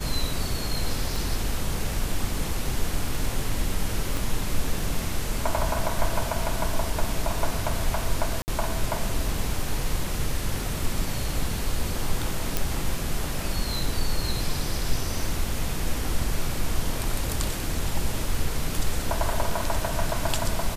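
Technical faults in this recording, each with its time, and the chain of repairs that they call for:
1.16 pop
4.17 pop
8.42–8.48 gap 59 ms
12.57 pop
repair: de-click; interpolate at 8.42, 59 ms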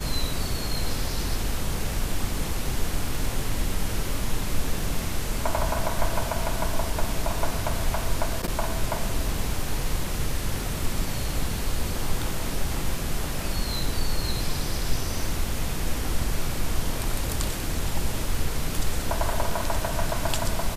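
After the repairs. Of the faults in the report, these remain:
1.16 pop
4.17 pop

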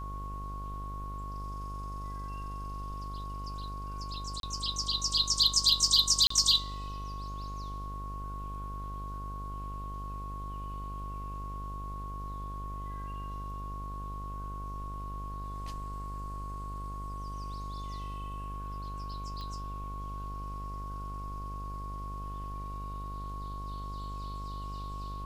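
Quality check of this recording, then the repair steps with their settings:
buzz 50 Hz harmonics 29 -40 dBFS
tone 1100 Hz -41 dBFS
4.4–4.43 gap 32 ms
6.27–6.3 gap 34 ms
19.41 pop -30 dBFS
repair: de-click; notch 1100 Hz, Q 30; de-hum 50 Hz, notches 29; interpolate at 4.4, 32 ms; interpolate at 6.27, 34 ms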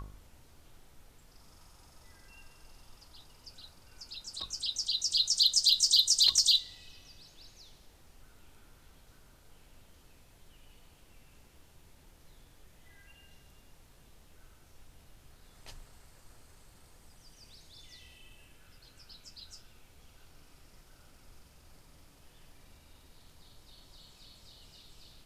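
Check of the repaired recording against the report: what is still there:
tone 1100 Hz

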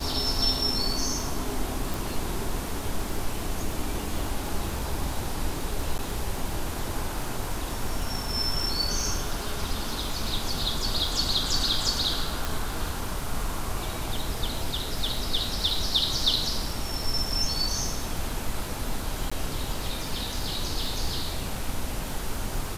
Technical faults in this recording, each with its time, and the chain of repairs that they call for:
crackle 51/s -32 dBFS
1.94 pop
5.98–5.99 gap 9.3 ms
12.45 pop
19.3–19.32 gap 15 ms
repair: de-click; interpolate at 5.98, 9.3 ms; interpolate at 19.3, 15 ms

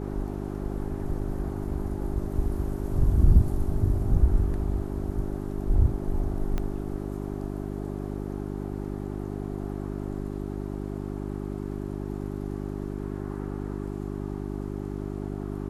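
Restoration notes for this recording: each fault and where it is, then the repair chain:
hum 50 Hz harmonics 8 -33 dBFS
6.58 pop -17 dBFS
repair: de-click; de-hum 50 Hz, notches 8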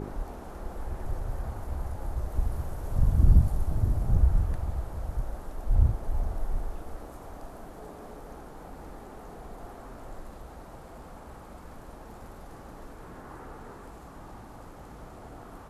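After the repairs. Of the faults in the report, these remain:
6.58 pop

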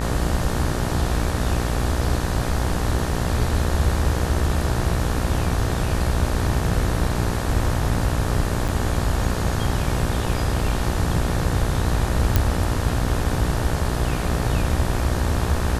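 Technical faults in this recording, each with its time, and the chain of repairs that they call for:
buzz 60 Hz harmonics 31 -26 dBFS
8.68–8.69 gap 7.1 ms
12.36 pop -3 dBFS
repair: de-click; de-hum 60 Hz, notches 31; interpolate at 8.68, 7.1 ms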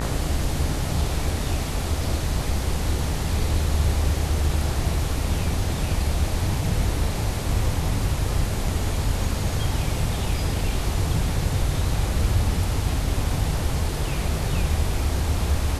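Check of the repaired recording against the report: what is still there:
none

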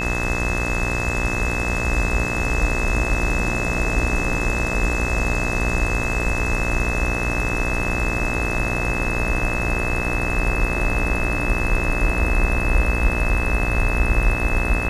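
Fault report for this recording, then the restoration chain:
buzz 60 Hz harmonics 35 -26 dBFS
tone 2600 Hz -25 dBFS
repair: de-hum 60 Hz, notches 35; notch 2600 Hz, Q 30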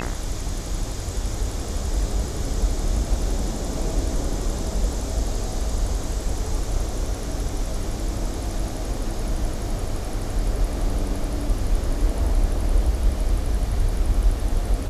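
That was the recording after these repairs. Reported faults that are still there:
none

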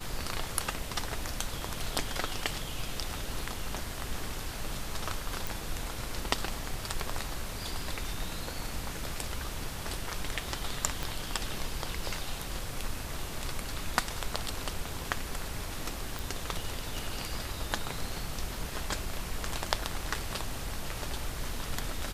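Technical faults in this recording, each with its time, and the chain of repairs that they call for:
5.47 pop
11.03 pop
16.19 pop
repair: de-click

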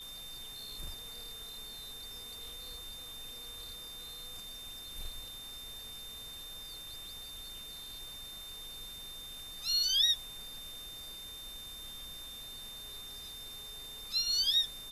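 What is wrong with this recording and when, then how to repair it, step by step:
tone 3600 Hz -45 dBFS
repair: notch 3600 Hz, Q 30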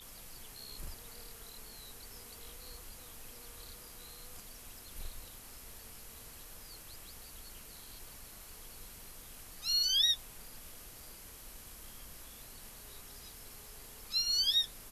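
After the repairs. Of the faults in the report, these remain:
none

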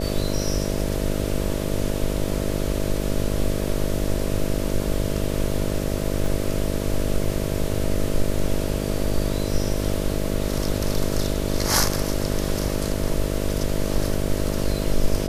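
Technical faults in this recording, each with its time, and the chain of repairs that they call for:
buzz 50 Hz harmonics 13 -26 dBFS
6.26 gap 2.2 ms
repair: de-hum 50 Hz, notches 13; interpolate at 6.26, 2.2 ms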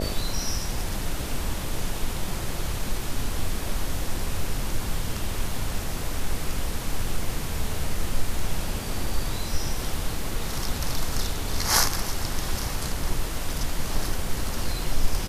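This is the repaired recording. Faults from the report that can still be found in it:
none

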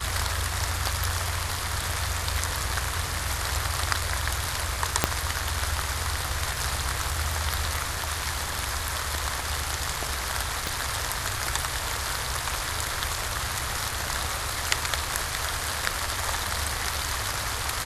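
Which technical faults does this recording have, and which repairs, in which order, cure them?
5.04 pop -2 dBFS
10.67 pop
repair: de-click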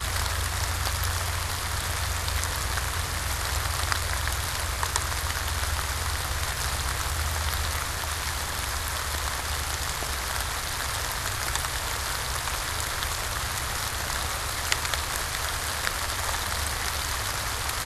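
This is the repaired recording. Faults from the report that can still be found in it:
5.04 pop
10.67 pop

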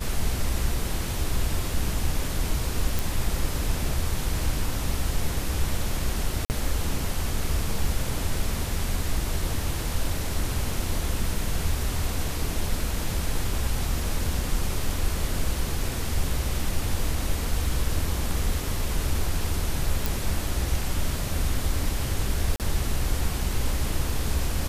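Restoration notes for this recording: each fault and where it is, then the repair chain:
2.99 pop
6.45–6.5 gap 49 ms
20.06 pop
22.56–22.6 gap 38 ms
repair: de-click; interpolate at 6.45, 49 ms; interpolate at 22.56, 38 ms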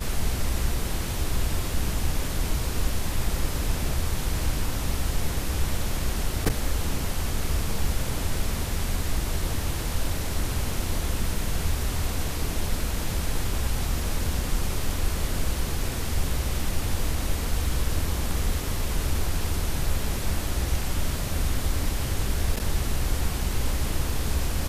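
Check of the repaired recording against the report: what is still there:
none

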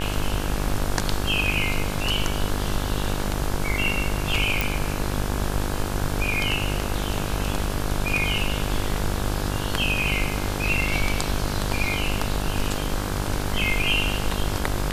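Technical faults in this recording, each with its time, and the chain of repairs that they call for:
buzz 50 Hz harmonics 34 -28 dBFS
4.61 pop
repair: de-click; de-hum 50 Hz, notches 34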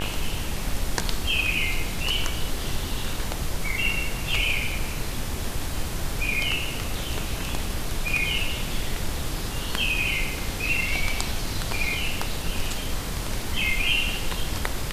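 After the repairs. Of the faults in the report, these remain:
none

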